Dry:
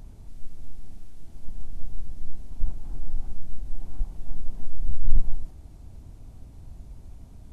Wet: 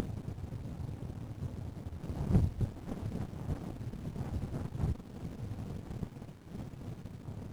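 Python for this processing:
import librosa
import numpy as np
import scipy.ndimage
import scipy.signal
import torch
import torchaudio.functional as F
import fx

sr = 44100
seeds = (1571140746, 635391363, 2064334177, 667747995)

y = np.flip(x).copy()
y = fx.dereverb_blind(y, sr, rt60_s=1.6)
y = scipy.signal.sosfilt(scipy.signal.butter(4, 97.0, 'highpass', fs=sr, output='sos'), y)
y = fx.running_max(y, sr, window=65)
y = y * 10.0 ** (15.0 / 20.0)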